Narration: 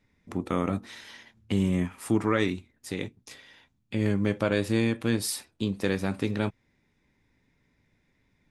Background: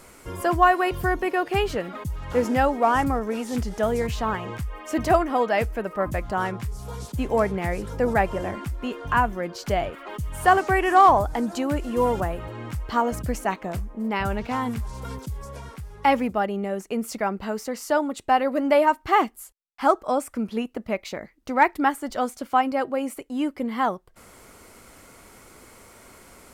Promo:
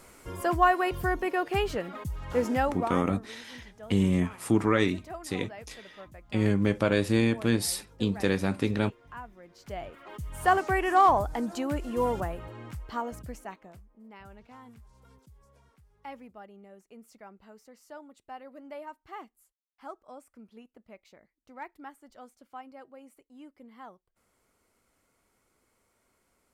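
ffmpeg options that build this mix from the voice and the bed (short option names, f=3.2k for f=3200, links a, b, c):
-filter_complex "[0:a]adelay=2400,volume=1dB[a];[1:a]volume=12dB,afade=t=out:st=2.52:d=0.54:silence=0.133352,afade=t=in:st=9.49:d=0.99:silence=0.149624,afade=t=out:st=12.11:d=1.72:silence=0.125893[b];[a][b]amix=inputs=2:normalize=0"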